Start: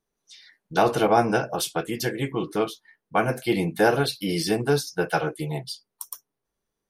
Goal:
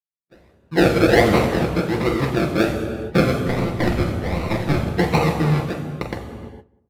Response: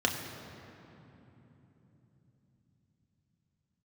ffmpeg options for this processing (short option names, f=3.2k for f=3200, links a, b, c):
-filter_complex "[0:a]agate=range=-33dB:threshold=-44dB:ratio=3:detection=peak,dynaudnorm=f=130:g=9:m=8dB,asplit=2[a][b];[b]aeval=exprs='(mod(7.94*val(0)+1,2)-1)/7.94':c=same,volume=-11.5dB[c];[a][c]amix=inputs=2:normalize=0,acrusher=samples=37:mix=1:aa=0.000001:lfo=1:lforange=22.2:lforate=1.3,asettb=1/sr,asplit=3[d][e][f];[d]atrim=end=3.434[g];[e]atrim=start=3.43:end=4.96,asetpts=PTS-STARTPTS,afade=t=in:d=0.004:c=qsin,afade=t=out:st=1.526:d=0.004:c=qsin,aeval=exprs='abs(val(0))':c=same[h];[f]atrim=start=4.956[i];[g][h]acrossfade=d=0.004:c1=hsin:c2=qsin[j];[j][i]acrossfade=d=0.004:c1=qsin:c2=hsin,asplit=2[k][l];[l]adelay=188,lowpass=f=1.2k:p=1,volume=-21dB,asplit=2[m][n];[n]adelay=188,lowpass=f=1.2k:p=1,volume=0.32[o];[k][m][o]amix=inputs=3:normalize=0[p];[1:a]atrim=start_sample=2205,afade=t=out:st=0.37:d=0.01,atrim=end_sample=16758,asetrate=29988,aresample=44100[q];[p][q]afir=irnorm=-1:irlink=0,volume=-13dB"